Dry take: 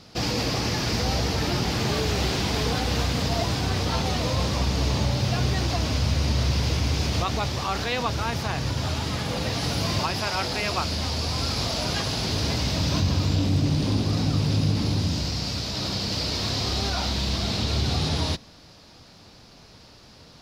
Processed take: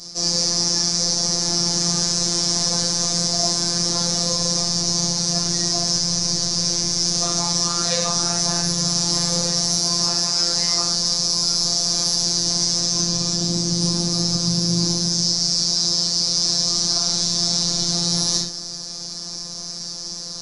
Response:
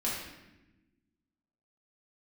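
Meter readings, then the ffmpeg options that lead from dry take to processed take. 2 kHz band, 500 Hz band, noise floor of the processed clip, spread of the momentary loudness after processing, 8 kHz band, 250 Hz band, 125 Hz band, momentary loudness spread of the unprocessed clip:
−5.5 dB, −1.0 dB, −32 dBFS, 3 LU, +17.5 dB, +1.0 dB, −4.0 dB, 4 LU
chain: -filter_complex "[0:a]highshelf=frequency=4100:width_type=q:width=3:gain=13.5,areverse,acompressor=threshold=-25dB:ratio=12,areverse[link_01];[1:a]atrim=start_sample=2205,afade=type=out:start_time=0.19:duration=0.01,atrim=end_sample=8820[link_02];[link_01][link_02]afir=irnorm=-1:irlink=0,afftfilt=real='hypot(re,im)*cos(PI*b)':imag='0':win_size=1024:overlap=0.75,aresample=22050,aresample=44100,volume=6.5dB"

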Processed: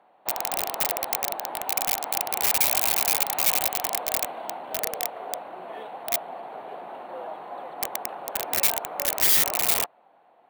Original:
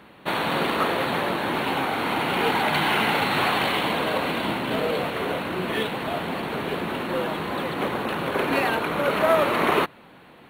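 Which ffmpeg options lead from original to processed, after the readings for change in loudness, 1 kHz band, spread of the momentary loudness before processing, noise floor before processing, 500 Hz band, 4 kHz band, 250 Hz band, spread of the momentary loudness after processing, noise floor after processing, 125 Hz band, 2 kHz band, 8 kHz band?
+0.5 dB, −7.0 dB, 7 LU, −49 dBFS, −10.0 dB, −3.0 dB, −18.0 dB, 19 LU, −59 dBFS, −16.5 dB, −8.5 dB, +16.0 dB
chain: -af "bandpass=frequency=730:width_type=q:width=4.4:csg=0,aeval=exprs='(mod(17.8*val(0)+1,2)-1)/17.8':channel_layout=same,aemphasis=mode=production:type=75fm"

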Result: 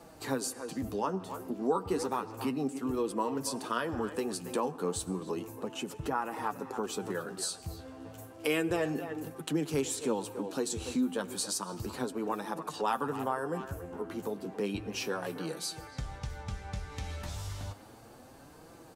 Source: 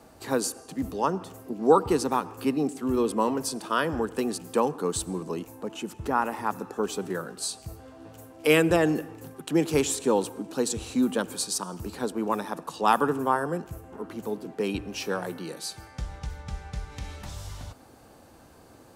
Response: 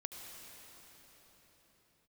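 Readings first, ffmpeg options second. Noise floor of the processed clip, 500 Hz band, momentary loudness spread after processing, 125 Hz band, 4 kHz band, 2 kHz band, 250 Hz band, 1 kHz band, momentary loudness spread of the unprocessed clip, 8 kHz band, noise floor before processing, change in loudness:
−53 dBFS, −7.5 dB, 10 LU, −4.5 dB, −4.5 dB, −7.0 dB, −6.5 dB, −7.5 dB, 17 LU, −5.0 dB, −53 dBFS, −7.0 dB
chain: -filter_complex "[0:a]asplit=2[link_01][link_02];[link_02]adelay=280,highpass=300,lowpass=3400,asoftclip=type=hard:threshold=-15dB,volume=-14dB[link_03];[link_01][link_03]amix=inputs=2:normalize=0,flanger=delay=5.8:depth=6.3:regen=40:speed=0.32:shape=triangular,acompressor=threshold=-37dB:ratio=2,volume=3.5dB"

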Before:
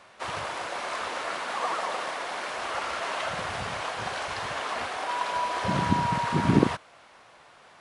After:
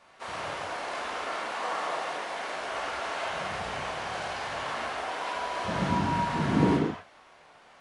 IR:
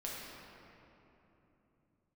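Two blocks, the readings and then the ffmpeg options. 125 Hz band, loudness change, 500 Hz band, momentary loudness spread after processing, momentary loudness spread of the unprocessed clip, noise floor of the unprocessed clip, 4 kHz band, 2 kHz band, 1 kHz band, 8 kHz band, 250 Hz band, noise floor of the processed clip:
−2.0 dB, −2.0 dB, −0.5 dB, 8 LU, 8 LU, −54 dBFS, −2.5 dB, −2.0 dB, −2.5 dB, −3.5 dB, −1.0 dB, −56 dBFS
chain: -filter_complex "[1:a]atrim=start_sample=2205,afade=type=out:start_time=0.41:duration=0.01,atrim=end_sample=18522,asetrate=57330,aresample=44100[link_01];[0:a][link_01]afir=irnorm=-1:irlink=0"

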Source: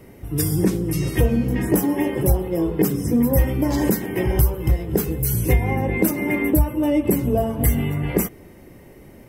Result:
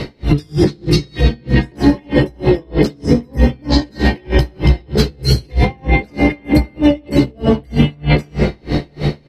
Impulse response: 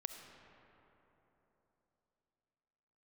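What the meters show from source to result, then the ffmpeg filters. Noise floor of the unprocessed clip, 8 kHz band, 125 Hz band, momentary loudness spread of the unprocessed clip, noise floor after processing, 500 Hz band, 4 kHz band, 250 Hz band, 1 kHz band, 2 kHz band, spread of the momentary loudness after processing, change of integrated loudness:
−45 dBFS, −6.5 dB, +5.5 dB, 4 LU, −44 dBFS, +4.5 dB, +14.5 dB, +5.5 dB, +5.5 dB, +7.0 dB, 4 LU, +4.5 dB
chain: -filter_complex "[0:a]acompressor=threshold=-31dB:ratio=3,lowpass=frequency=4200:width_type=q:width=10,asplit=2[link_01][link_02];[link_02]adelay=14,volume=-5dB[link_03];[link_01][link_03]amix=inputs=2:normalize=0[link_04];[1:a]atrim=start_sample=2205[link_05];[link_04][link_05]afir=irnorm=-1:irlink=0,alimiter=level_in=28dB:limit=-1dB:release=50:level=0:latency=1,aeval=exprs='val(0)*pow(10,-35*(0.5-0.5*cos(2*PI*3.2*n/s))/20)':channel_layout=same"

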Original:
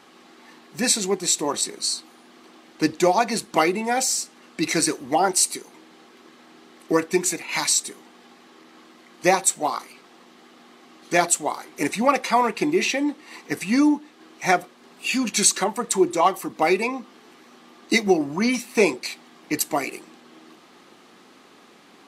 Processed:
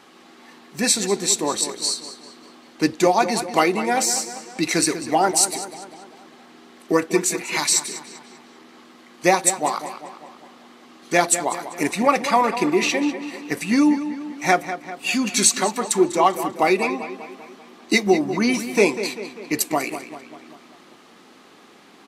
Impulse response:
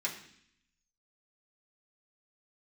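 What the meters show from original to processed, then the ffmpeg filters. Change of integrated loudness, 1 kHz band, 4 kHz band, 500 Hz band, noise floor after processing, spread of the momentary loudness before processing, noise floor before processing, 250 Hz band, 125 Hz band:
+1.5 dB, +2.0 dB, +1.5 dB, +2.0 dB, −49 dBFS, 11 LU, −52 dBFS, +2.0 dB, +2.0 dB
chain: -filter_complex "[0:a]asplit=2[link_01][link_02];[link_02]adelay=196,lowpass=frequency=4600:poles=1,volume=-11dB,asplit=2[link_03][link_04];[link_04]adelay=196,lowpass=frequency=4600:poles=1,volume=0.55,asplit=2[link_05][link_06];[link_06]adelay=196,lowpass=frequency=4600:poles=1,volume=0.55,asplit=2[link_07][link_08];[link_08]adelay=196,lowpass=frequency=4600:poles=1,volume=0.55,asplit=2[link_09][link_10];[link_10]adelay=196,lowpass=frequency=4600:poles=1,volume=0.55,asplit=2[link_11][link_12];[link_12]adelay=196,lowpass=frequency=4600:poles=1,volume=0.55[link_13];[link_01][link_03][link_05][link_07][link_09][link_11][link_13]amix=inputs=7:normalize=0,volume=1.5dB"

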